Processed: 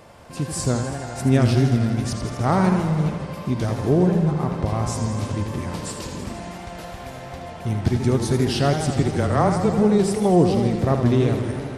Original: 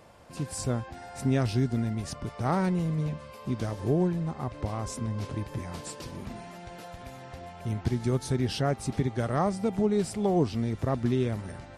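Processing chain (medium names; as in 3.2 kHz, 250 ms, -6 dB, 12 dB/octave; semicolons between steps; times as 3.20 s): 9.02–9.77 s: frequency shift -17 Hz; modulated delay 81 ms, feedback 78%, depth 159 cents, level -8 dB; trim +7 dB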